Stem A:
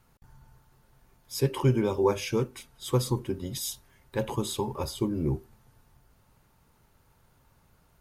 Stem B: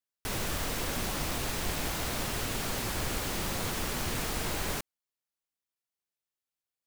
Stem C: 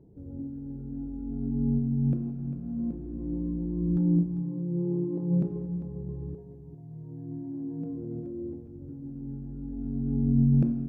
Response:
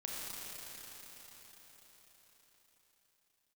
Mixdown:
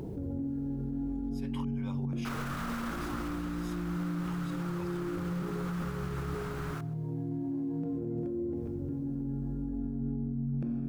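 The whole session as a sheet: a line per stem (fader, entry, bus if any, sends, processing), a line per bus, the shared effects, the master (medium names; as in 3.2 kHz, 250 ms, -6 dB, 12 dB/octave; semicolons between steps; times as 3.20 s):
+2.5 dB, 0.00 s, no send, no echo send, amplifier tone stack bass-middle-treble 10-0-10; slow attack 278 ms; treble shelf 5.6 kHz -11.5 dB
2.88 s -4 dB -> 3.58 s -12.5 dB, 2.00 s, no send, echo send -21.5 dB, peaking EQ 1.3 kHz +15 dB 0.75 oct
-3.5 dB, 0.00 s, no send, no echo send, tilt shelf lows -6.5 dB, about 850 Hz; level flattener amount 70%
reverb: none
echo: delay 127 ms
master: treble shelf 3.4 kHz -7 dB; upward compressor, threshold -46 dBFS; peak limiter -27 dBFS, peak gain reduction 8 dB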